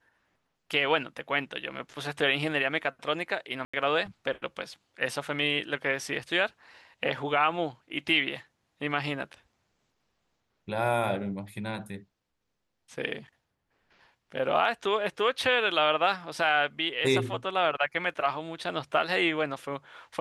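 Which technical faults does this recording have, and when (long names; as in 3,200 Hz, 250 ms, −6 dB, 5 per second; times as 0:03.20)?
0:03.65–0:03.73: drop-out 85 ms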